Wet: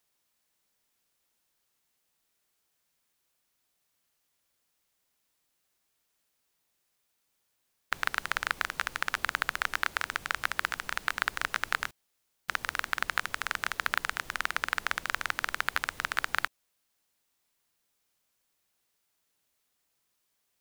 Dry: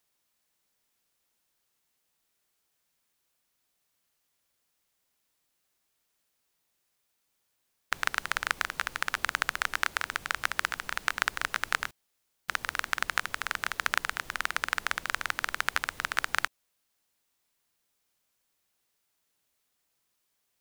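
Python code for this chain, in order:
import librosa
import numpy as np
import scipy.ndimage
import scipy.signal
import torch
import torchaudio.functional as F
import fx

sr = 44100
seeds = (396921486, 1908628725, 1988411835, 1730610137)

y = np.clip(10.0 ** (10.0 / 20.0) * x, -1.0, 1.0) / 10.0 ** (10.0 / 20.0)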